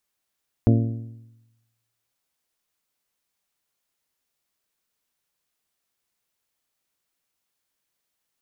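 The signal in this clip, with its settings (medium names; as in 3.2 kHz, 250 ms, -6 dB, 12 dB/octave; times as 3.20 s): metal hit bell, lowest mode 114 Hz, modes 7, decay 1.04 s, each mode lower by 3.5 dB, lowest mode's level -13 dB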